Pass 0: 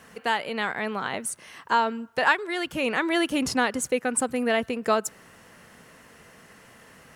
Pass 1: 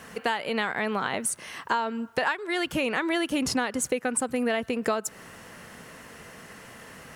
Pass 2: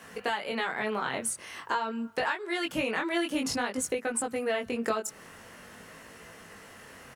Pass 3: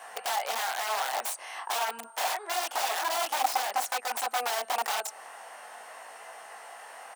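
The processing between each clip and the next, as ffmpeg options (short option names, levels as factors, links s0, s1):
-af "acompressor=threshold=0.0355:ratio=6,volume=1.88"
-filter_complex "[0:a]flanger=delay=18:depth=5.3:speed=0.48,acrossover=split=160[s0][s1];[s0]adelay=30[s2];[s2][s1]amix=inputs=2:normalize=0"
-af "aeval=exprs='val(0)+0.00141*sin(2*PI*8700*n/s)':c=same,aeval=exprs='(mod(23.7*val(0)+1,2)-1)/23.7':c=same,highpass=f=760:t=q:w=5.2"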